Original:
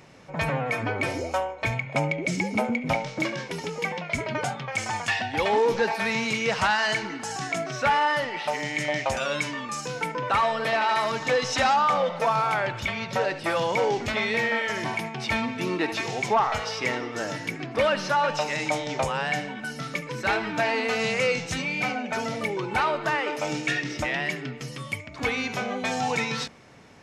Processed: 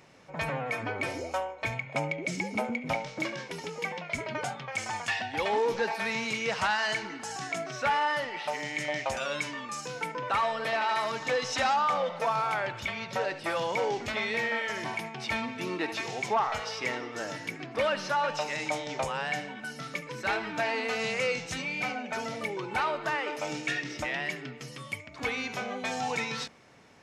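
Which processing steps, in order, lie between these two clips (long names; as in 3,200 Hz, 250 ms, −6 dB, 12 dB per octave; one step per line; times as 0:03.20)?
low-shelf EQ 240 Hz −5 dB
level −4.5 dB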